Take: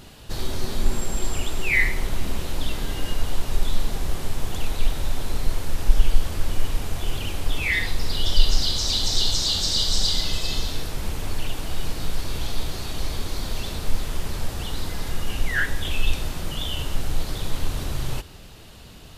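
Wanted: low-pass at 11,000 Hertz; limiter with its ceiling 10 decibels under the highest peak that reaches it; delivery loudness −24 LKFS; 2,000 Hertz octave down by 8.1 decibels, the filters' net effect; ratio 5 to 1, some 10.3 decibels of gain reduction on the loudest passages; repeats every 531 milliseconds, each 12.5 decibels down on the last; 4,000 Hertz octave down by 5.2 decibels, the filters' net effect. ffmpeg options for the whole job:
ffmpeg -i in.wav -af "lowpass=11000,equalizer=frequency=2000:width_type=o:gain=-8.5,equalizer=frequency=4000:width_type=o:gain=-4,acompressor=threshold=-18dB:ratio=5,alimiter=limit=-21.5dB:level=0:latency=1,aecho=1:1:531|1062|1593:0.237|0.0569|0.0137,volume=11.5dB" out.wav

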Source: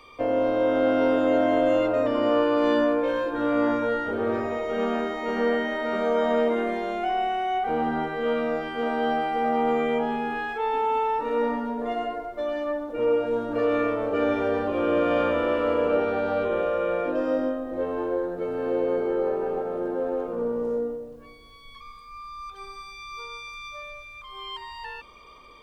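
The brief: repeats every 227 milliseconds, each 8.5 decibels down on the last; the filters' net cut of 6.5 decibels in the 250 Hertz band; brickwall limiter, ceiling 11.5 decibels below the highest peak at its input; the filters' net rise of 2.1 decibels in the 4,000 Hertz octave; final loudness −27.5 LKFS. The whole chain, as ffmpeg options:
ffmpeg -i in.wav -af "equalizer=frequency=250:width_type=o:gain=-8,equalizer=frequency=4000:width_type=o:gain=3,alimiter=level_in=0.5dB:limit=-24dB:level=0:latency=1,volume=-0.5dB,aecho=1:1:227|454|681|908:0.376|0.143|0.0543|0.0206,volume=5dB" out.wav

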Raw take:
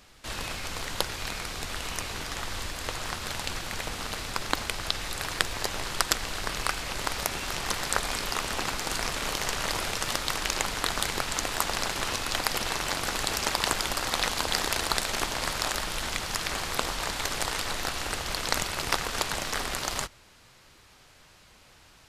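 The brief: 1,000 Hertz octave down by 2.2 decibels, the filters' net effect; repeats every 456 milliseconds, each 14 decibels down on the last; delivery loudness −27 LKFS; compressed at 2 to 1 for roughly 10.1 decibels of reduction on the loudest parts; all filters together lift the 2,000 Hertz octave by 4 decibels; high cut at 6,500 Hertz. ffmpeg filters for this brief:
ffmpeg -i in.wav -af "lowpass=6500,equalizer=frequency=1000:width_type=o:gain=-5,equalizer=frequency=2000:width_type=o:gain=6.5,acompressor=threshold=-37dB:ratio=2,aecho=1:1:456|912:0.2|0.0399,volume=8dB" out.wav

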